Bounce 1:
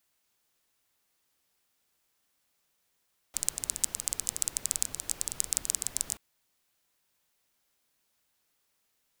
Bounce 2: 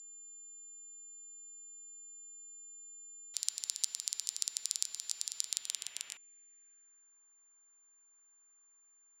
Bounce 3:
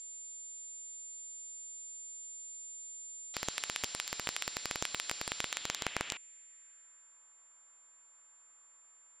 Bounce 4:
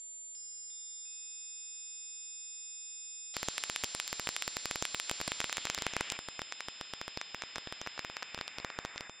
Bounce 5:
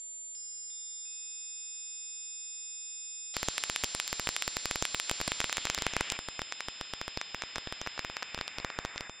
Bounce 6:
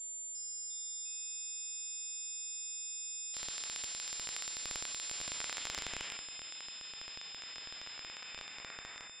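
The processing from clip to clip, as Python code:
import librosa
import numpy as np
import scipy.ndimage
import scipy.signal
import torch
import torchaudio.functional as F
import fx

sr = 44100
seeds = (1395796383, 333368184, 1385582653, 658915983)

y1 = x + 10.0 ** (-44.0 / 20.0) * np.sin(2.0 * np.pi * 7200.0 * np.arange(len(x)) / sr)
y1 = fx.filter_sweep_bandpass(y1, sr, from_hz=4500.0, to_hz=1200.0, start_s=5.37, end_s=7.21, q=2.1)
y1 = F.gain(torch.from_numpy(y1), 3.0).numpy()
y2 = (np.mod(10.0 ** (19.5 / 20.0) * y1 + 1.0, 2.0) - 1.0) / 10.0 ** (19.5 / 20.0)
y2 = fx.air_absorb(y2, sr, metres=82.0)
y2 = F.gain(torch.from_numpy(y2), 12.0).numpy()
y3 = fx.echo_pitch(y2, sr, ms=351, semitones=-6, count=3, db_per_echo=-6.0)
y4 = fx.low_shelf(y3, sr, hz=76.0, db=6.5)
y4 = F.gain(torch.from_numpy(y4), 3.5).numpy()
y5 = fx.hpss(y4, sr, part='percussive', gain_db=-18)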